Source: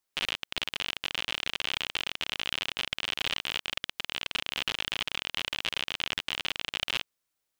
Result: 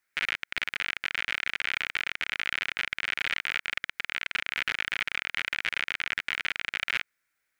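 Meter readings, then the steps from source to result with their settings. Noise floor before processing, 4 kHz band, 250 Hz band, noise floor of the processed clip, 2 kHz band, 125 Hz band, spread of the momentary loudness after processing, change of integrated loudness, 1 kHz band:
−83 dBFS, −4.0 dB, −4.5 dB, −82 dBFS, +6.0 dB, −4.5 dB, 2 LU, +1.5 dB, +1.0 dB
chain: flat-topped bell 1,800 Hz +13.5 dB 1 octave
brickwall limiter −14 dBFS, peak gain reduction 10 dB

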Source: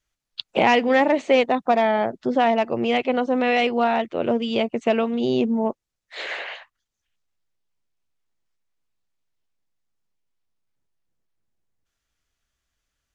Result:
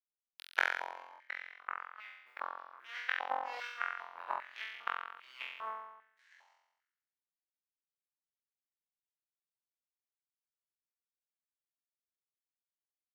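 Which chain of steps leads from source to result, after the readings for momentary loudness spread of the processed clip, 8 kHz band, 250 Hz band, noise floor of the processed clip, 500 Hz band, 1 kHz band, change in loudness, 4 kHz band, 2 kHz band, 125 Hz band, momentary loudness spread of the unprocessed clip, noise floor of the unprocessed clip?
14 LU, can't be measured, below −40 dB, below −85 dBFS, −32.0 dB, −17.5 dB, −18.5 dB, −18.5 dB, −10.5 dB, below −40 dB, 14 LU, −82 dBFS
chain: running median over 5 samples
high-shelf EQ 3,600 Hz −9 dB
in parallel at +1 dB: output level in coarse steps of 19 dB
on the sum: bit-depth reduction 10 bits, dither triangular
power curve on the samples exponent 3
gate with flip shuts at −20 dBFS, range −39 dB
on a send: flutter between parallel walls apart 3.9 metres, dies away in 0.92 s
on the sum: high-pass on a step sequencer 2.5 Hz 840–2,200 Hz
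level −1.5 dB

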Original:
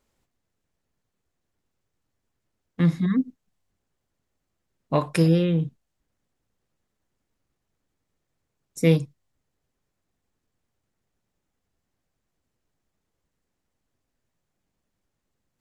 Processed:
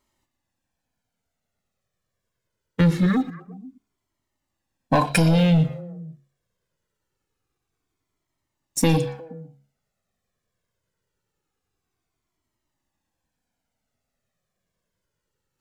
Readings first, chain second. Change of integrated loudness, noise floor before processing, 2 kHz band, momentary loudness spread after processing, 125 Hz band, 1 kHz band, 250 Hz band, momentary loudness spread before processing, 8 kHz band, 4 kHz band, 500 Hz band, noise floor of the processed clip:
+2.0 dB, −80 dBFS, +7.0 dB, 20 LU, +2.5 dB, +8.0 dB, +2.5 dB, 11 LU, +11.0 dB, +6.5 dB, +0.5 dB, −82 dBFS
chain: low-shelf EQ 72 Hz −10.5 dB
hum removal 69.5 Hz, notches 10
in parallel at +1 dB: brickwall limiter −16.5 dBFS, peak gain reduction 9.5 dB
on the sum: leveller curve on the samples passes 2
downward compressor, threshold −12 dBFS, peak gain reduction 4.5 dB
on a send: echo through a band-pass that steps 119 ms, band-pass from 3,700 Hz, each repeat −1.4 octaves, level −11 dB
on the sum: flanger whose copies keep moving one way falling 0.24 Hz
level +3 dB

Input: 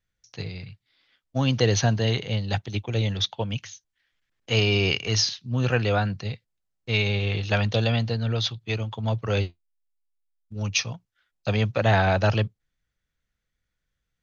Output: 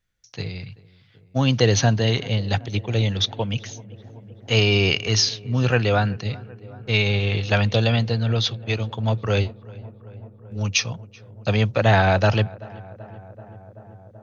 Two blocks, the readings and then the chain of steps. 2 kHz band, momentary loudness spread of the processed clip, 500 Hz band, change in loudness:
+3.5 dB, 20 LU, +3.5 dB, +3.5 dB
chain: feedback echo with a low-pass in the loop 383 ms, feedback 82%, low-pass 1,700 Hz, level −21 dB
level +3.5 dB

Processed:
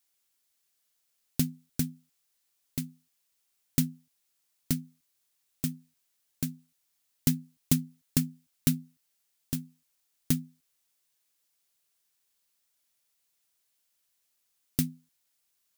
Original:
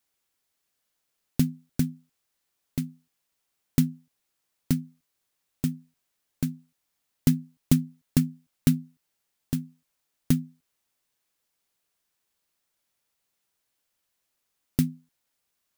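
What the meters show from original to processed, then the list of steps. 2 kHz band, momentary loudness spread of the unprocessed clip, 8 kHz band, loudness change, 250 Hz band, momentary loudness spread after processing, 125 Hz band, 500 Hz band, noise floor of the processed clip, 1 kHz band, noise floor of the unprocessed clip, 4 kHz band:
−1.5 dB, 9 LU, +3.0 dB, −3.5 dB, −5.5 dB, 9 LU, −5.5 dB, −5.0 dB, −76 dBFS, −4.0 dB, −79 dBFS, +1.5 dB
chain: high-shelf EQ 2,500 Hz +9.5 dB
level −5.5 dB

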